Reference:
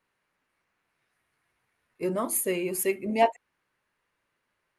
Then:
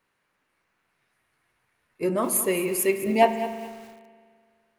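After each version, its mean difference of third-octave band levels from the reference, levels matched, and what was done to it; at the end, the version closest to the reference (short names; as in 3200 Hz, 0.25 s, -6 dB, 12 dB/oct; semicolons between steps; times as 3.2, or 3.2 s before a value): 4.5 dB: spring tank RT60 2 s, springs 41 ms, chirp 25 ms, DRR 10 dB; lo-fi delay 0.21 s, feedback 35%, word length 7-bit, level -13 dB; gain +3.5 dB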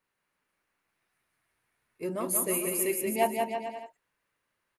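7.0 dB: high shelf 8400 Hz +7.5 dB; on a send: bouncing-ball echo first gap 0.18 s, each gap 0.8×, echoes 5; on the sum: gain -5 dB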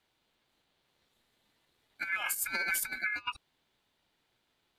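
12.5 dB: negative-ratio compressor -31 dBFS, ratio -0.5; ring modulator 1900 Hz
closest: first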